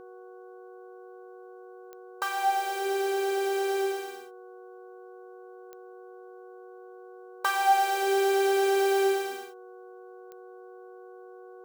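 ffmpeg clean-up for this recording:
ffmpeg -i in.wav -af "adeclick=threshold=4,bandreject=frequency=370.5:width_type=h:width=4,bandreject=frequency=741:width_type=h:width=4,bandreject=frequency=1111.5:width_type=h:width=4,bandreject=frequency=1482:width_type=h:width=4,bandreject=frequency=480:width=30" out.wav

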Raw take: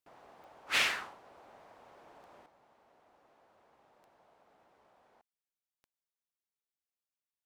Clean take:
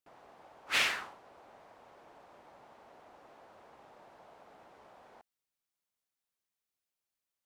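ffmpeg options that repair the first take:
ffmpeg -i in.wav -af "adeclick=threshold=4,asetnsamples=nb_out_samples=441:pad=0,asendcmd='2.46 volume volume 9.5dB',volume=0dB" out.wav

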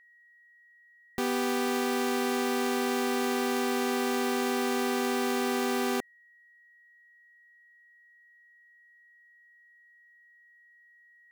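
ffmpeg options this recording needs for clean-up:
ffmpeg -i in.wav -af "bandreject=frequency=1900:width=30" out.wav

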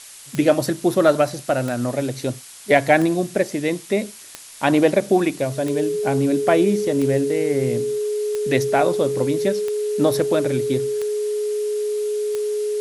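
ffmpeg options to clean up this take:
ffmpeg -i in.wav -af "adeclick=threshold=4,bandreject=frequency=420:width=30,afftdn=noise_reduction=25:noise_floor=-39" out.wav

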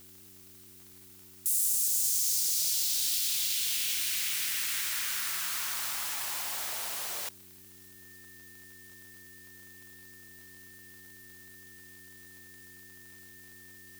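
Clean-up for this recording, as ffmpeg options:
ffmpeg -i in.wav -af "adeclick=threshold=4,bandreject=frequency=93.1:width_type=h:width=4,bandreject=frequency=186.2:width_type=h:width=4,bandreject=frequency=279.3:width_type=h:width=4,bandreject=frequency=372.4:width_type=h:width=4,bandreject=frequency=1800:width=30,afftdn=noise_reduction=25:noise_floor=-53" out.wav

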